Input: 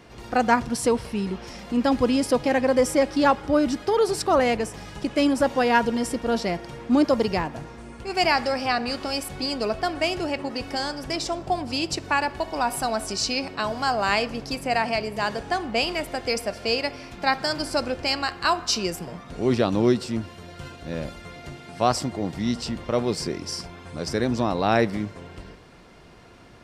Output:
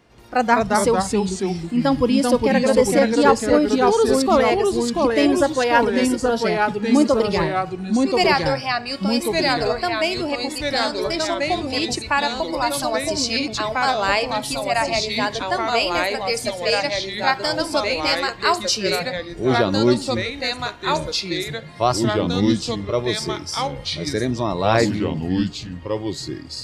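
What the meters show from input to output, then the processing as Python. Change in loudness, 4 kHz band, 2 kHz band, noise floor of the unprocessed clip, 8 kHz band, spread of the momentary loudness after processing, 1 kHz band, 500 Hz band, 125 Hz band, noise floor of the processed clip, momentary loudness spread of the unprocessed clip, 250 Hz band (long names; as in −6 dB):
+4.5 dB, +5.5 dB, +5.0 dB, −44 dBFS, +5.0 dB, 8 LU, +4.0 dB, +5.0 dB, +5.5 dB, −34 dBFS, 12 LU, +4.5 dB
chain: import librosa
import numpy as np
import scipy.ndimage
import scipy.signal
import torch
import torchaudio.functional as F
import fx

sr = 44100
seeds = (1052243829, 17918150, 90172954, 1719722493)

y = fx.noise_reduce_blind(x, sr, reduce_db=10)
y = fx.echo_pitch(y, sr, ms=162, semitones=-2, count=2, db_per_echo=-3.0)
y = F.gain(torch.from_numpy(y), 3.0).numpy()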